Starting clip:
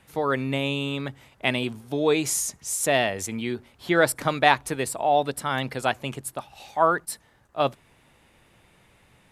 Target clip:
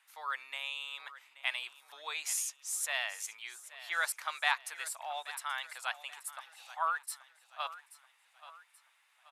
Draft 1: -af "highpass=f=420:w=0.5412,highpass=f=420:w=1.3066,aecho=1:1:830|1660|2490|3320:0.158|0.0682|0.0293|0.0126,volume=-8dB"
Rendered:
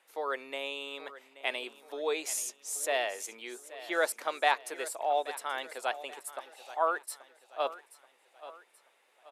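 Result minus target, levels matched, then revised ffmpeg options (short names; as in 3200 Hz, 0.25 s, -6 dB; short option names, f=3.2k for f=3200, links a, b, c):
500 Hz band +14.5 dB
-af "highpass=f=1k:w=0.5412,highpass=f=1k:w=1.3066,aecho=1:1:830|1660|2490|3320:0.158|0.0682|0.0293|0.0126,volume=-8dB"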